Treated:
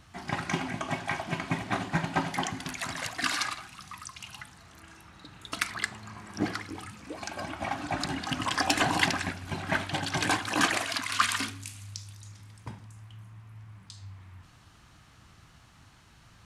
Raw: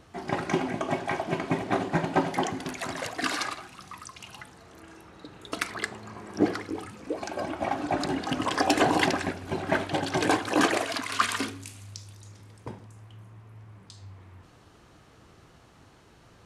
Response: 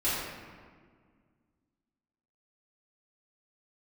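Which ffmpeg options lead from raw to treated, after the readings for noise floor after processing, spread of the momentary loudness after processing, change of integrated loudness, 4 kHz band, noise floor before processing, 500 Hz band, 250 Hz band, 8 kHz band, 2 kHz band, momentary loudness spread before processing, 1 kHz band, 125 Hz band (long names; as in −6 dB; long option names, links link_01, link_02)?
−57 dBFS, 22 LU, −2.0 dB, +1.5 dB, −56 dBFS, −9.0 dB, −5.5 dB, +2.0 dB, +0.5 dB, 20 LU, −3.0 dB, 0.0 dB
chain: -af "equalizer=frequency=440:width_type=o:width=1.4:gain=-14.5,volume=2dB"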